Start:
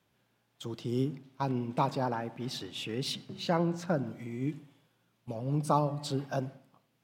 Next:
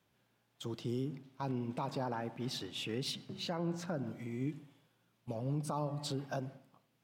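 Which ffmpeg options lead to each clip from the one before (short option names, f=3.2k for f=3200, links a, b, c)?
-af "alimiter=level_in=1.5dB:limit=-24dB:level=0:latency=1:release=142,volume=-1.5dB,volume=-2dB"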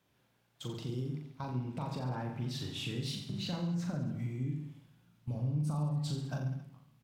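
-af "asubboost=boost=6:cutoff=180,acompressor=threshold=-36dB:ratio=3,aecho=1:1:40|86|138.9|199.7|269.7:0.631|0.398|0.251|0.158|0.1"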